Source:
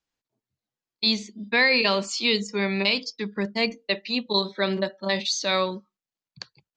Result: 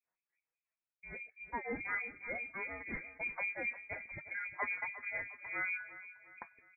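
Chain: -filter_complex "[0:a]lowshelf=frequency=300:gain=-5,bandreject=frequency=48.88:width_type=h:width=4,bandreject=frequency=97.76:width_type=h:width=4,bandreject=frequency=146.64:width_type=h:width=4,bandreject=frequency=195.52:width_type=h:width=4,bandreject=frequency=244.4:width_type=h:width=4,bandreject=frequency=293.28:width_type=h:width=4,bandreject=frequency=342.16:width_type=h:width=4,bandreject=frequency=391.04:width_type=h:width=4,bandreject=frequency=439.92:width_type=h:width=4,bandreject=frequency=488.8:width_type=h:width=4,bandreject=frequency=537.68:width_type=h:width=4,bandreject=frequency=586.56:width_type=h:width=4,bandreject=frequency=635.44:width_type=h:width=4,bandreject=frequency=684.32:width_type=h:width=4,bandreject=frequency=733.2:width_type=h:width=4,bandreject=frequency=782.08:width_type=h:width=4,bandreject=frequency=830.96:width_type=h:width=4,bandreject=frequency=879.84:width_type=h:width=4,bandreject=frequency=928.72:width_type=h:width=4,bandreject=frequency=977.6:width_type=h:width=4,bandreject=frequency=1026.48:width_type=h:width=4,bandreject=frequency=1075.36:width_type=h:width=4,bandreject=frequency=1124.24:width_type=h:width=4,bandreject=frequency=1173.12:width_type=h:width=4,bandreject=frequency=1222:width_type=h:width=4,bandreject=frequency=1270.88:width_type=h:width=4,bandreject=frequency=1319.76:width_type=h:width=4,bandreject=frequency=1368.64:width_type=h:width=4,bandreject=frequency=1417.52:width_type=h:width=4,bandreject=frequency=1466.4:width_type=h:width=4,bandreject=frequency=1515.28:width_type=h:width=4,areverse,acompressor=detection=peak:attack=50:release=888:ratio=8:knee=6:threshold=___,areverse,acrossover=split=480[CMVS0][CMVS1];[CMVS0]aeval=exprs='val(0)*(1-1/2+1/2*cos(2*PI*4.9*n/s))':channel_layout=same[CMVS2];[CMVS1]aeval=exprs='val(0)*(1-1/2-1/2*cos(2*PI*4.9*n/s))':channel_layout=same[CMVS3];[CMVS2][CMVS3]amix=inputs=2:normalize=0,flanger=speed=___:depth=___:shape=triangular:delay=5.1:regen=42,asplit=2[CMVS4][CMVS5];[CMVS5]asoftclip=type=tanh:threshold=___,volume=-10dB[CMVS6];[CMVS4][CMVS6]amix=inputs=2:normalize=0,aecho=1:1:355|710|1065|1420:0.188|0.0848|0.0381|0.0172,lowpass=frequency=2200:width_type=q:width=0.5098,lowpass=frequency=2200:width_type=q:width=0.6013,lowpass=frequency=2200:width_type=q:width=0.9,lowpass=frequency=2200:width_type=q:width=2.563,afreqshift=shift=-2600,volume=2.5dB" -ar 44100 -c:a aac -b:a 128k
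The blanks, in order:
-30dB, 0.57, 1.8, -32dB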